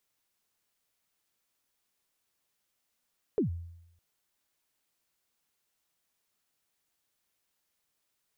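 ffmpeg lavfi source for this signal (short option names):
-f lavfi -i "aevalsrc='0.0794*pow(10,-3*t/0.83)*sin(2*PI*(480*0.117/log(85/480)*(exp(log(85/480)*min(t,0.117)/0.117)-1)+85*max(t-0.117,0)))':d=0.61:s=44100"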